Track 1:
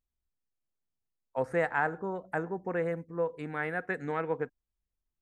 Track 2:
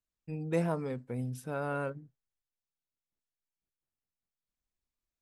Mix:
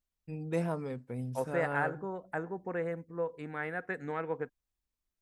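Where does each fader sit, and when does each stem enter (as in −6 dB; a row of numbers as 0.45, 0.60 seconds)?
−3.5, −2.0 decibels; 0.00, 0.00 seconds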